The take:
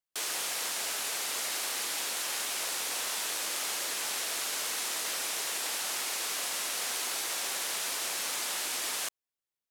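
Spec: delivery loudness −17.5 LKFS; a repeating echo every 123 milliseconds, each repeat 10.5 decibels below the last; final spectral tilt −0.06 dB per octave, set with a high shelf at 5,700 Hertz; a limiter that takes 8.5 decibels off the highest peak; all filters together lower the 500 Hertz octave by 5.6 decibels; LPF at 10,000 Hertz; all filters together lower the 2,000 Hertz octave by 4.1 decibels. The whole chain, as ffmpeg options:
ffmpeg -i in.wav -af "lowpass=10000,equalizer=frequency=500:width_type=o:gain=-7,equalizer=frequency=2000:width_type=o:gain=-4,highshelf=frequency=5700:gain=-6,alimiter=level_in=9dB:limit=-24dB:level=0:latency=1,volume=-9dB,aecho=1:1:123|246|369:0.299|0.0896|0.0269,volume=22dB" out.wav

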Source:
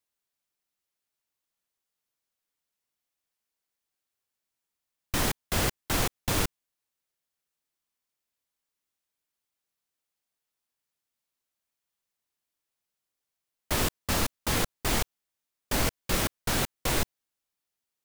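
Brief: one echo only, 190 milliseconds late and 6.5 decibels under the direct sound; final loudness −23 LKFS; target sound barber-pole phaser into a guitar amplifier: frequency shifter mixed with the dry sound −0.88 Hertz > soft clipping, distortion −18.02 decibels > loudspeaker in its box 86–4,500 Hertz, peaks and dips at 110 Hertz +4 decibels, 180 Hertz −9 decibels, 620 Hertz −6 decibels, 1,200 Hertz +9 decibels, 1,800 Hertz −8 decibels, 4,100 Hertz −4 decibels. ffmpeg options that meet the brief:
ffmpeg -i in.wav -filter_complex "[0:a]aecho=1:1:190:0.473,asplit=2[link_01][link_02];[link_02]afreqshift=-0.88[link_03];[link_01][link_03]amix=inputs=2:normalize=1,asoftclip=threshold=-22.5dB,highpass=86,equalizer=frequency=110:width_type=q:width=4:gain=4,equalizer=frequency=180:width_type=q:width=4:gain=-9,equalizer=frequency=620:width_type=q:width=4:gain=-6,equalizer=frequency=1200:width_type=q:width=4:gain=9,equalizer=frequency=1800:width_type=q:width=4:gain=-8,equalizer=frequency=4100:width_type=q:width=4:gain=-4,lowpass=frequency=4500:width=0.5412,lowpass=frequency=4500:width=1.3066,volume=12.5dB" out.wav

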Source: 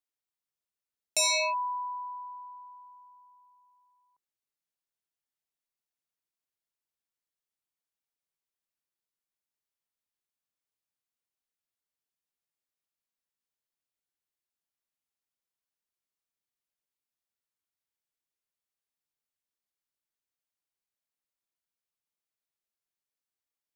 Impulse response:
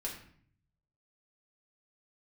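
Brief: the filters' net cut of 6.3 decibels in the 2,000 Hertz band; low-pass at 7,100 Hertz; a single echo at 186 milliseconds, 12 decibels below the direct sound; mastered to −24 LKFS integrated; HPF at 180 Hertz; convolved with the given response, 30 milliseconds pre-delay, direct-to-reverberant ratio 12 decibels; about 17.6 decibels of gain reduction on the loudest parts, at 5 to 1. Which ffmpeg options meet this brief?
-filter_complex "[0:a]highpass=180,lowpass=7100,equalizer=frequency=2000:width_type=o:gain=-8.5,acompressor=threshold=-47dB:ratio=5,aecho=1:1:186:0.251,asplit=2[link_01][link_02];[1:a]atrim=start_sample=2205,adelay=30[link_03];[link_02][link_03]afir=irnorm=-1:irlink=0,volume=-12.5dB[link_04];[link_01][link_04]amix=inputs=2:normalize=0,volume=22.5dB"

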